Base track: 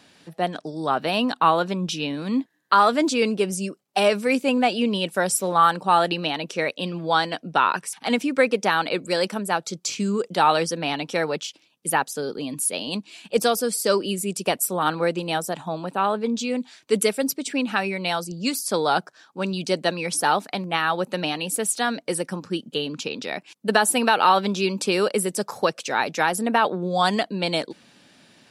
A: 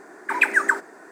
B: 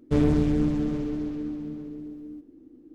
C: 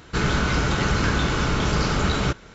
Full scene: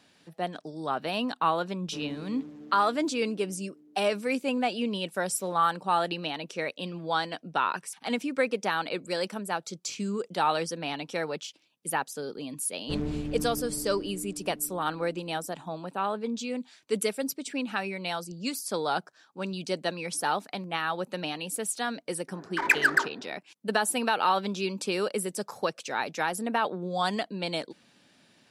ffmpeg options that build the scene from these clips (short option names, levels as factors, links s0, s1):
-filter_complex "[2:a]asplit=2[s0][s1];[0:a]volume=0.422[s2];[s0]highpass=220[s3];[1:a]adynamicsmooth=sensitivity=2.5:basefreq=1200[s4];[s3]atrim=end=2.94,asetpts=PTS-STARTPTS,volume=0.126,afade=t=in:d=0.004:c=hsin,afade=t=out:st=2.936:d=0.004:c=hsin,adelay=1810[s5];[s1]atrim=end=2.94,asetpts=PTS-STARTPTS,volume=0.299,afade=t=in:d=0.004:c=hsin,afade=t=out:st=2.936:d=0.004:c=hsin,adelay=12780[s6];[s4]atrim=end=1.11,asetpts=PTS-STARTPTS,volume=0.668,afade=t=in:d=0.004:c=hsin,afade=t=out:st=1.106:d=0.004:c=hsin,adelay=982548S[s7];[s2][s5][s6][s7]amix=inputs=4:normalize=0"